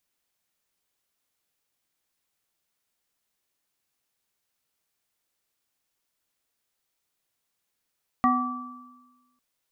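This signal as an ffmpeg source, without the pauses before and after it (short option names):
-f lavfi -i "aevalsrc='0.0891*pow(10,-3*t/1.29)*sin(2*PI*250*t)+0.0708*pow(10,-3*t/0.74)*sin(2*PI*753*t)+0.119*pow(10,-3*t/1.24)*sin(2*PI*1160*t)+0.0237*pow(10,-3*t/0.33)*sin(2*PI*1910*t)':d=1.15:s=44100"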